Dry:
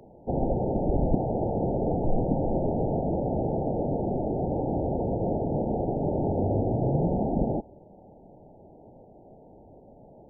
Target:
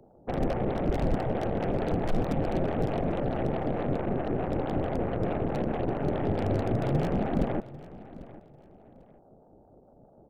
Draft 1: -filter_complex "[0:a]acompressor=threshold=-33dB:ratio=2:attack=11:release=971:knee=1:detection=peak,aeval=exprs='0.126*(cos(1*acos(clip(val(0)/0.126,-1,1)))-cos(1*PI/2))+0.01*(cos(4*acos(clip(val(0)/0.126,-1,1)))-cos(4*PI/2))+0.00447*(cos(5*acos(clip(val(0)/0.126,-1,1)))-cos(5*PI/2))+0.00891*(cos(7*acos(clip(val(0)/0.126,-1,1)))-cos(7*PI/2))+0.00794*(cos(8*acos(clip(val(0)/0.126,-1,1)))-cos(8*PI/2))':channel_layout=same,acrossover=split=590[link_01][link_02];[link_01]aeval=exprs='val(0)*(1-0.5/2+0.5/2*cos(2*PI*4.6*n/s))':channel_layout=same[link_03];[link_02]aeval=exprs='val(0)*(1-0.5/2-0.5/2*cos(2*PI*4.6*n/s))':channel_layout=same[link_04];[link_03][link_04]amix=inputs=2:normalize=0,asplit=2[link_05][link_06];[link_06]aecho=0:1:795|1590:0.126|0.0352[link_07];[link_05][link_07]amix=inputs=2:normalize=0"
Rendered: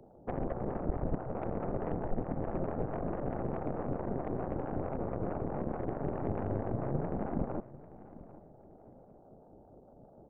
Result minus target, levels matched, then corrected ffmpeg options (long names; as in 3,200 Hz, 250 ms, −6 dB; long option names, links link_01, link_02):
downward compressor: peak gain reduction +10 dB
-filter_complex "[0:a]aeval=exprs='0.126*(cos(1*acos(clip(val(0)/0.126,-1,1)))-cos(1*PI/2))+0.01*(cos(4*acos(clip(val(0)/0.126,-1,1)))-cos(4*PI/2))+0.00447*(cos(5*acos(clip(val(0)/0.126,-1,1)))-cos(5*PI/2))+0.00891*(cos(7*acos(clip(val(0)/0.126,-1,1)))-cos(7*PI/2))+0.00794*(cos(8*acos(clip(val(0)/0.126,-1,1)))-cos(8*PI/2))':channel_layout=same,acrossover=split=590[link_01][link_02];[link_01]aeval=exprs='val(0)*(1-0.5/2+0.5/2*cos(2*PI*4.6*n/s))':channel_layout=same[link_03];[link_02]aeval=exprs='val(0)*(1-0.5/2-0.5/2*cos(2*PI*4.6*n/s))':channel_layout=same[link_04];[link_03][link_04]amix=inputs=2:normalize=0,asplit=2[link_05][link_06];[link_06]aecho=0:1:795|1590:0.126|0.0352[link_07];[link_05][link_07]amix=inputs=2:normalize=0"